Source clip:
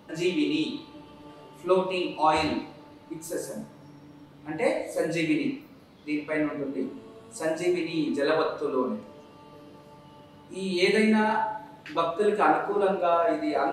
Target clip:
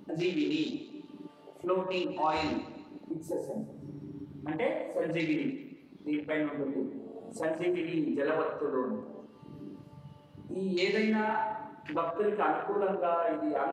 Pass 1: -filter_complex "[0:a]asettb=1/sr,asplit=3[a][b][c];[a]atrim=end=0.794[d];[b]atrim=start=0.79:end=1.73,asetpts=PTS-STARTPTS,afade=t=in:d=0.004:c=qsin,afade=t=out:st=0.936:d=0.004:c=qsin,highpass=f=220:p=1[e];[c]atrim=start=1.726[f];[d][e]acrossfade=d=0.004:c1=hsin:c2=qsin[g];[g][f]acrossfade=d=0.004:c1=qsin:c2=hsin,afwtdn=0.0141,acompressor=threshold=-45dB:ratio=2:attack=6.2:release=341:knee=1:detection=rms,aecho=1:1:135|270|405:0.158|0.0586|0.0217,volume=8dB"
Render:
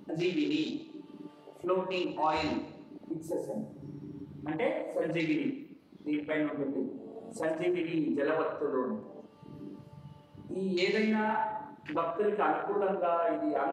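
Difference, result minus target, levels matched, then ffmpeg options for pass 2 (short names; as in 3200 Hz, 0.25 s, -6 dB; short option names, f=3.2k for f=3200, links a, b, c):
echo 56 ms early
-filter_complex "[0:a]asettb=1/sr,asplit=3[a][b][c];[a]atrim=end=0.794[d];[b]atrim=start=0.79:end=1.73,asetpts=PTS-STARTPTS,afade=t=in:d=0.004:c=qsin,afade=t=out:st=0.936:d=0.004:c=qsin,highpass=f=220:p=1[e];[c]atrim=start=1.726[f];[d][e]acrossfade=d=0.004:c1=hsin:c2=qsin[g];[g][f]acrossfade=d=0.004:c1=qsin:c2=hsin,afwtdn=0.0141,acompressor=threshold=-45dB:ratio=2:attack=6.2:release=341:knee=1:detection=rms,aecho=1:1:191|382|573:0.158|0.0586|0.0217,volume=8dB"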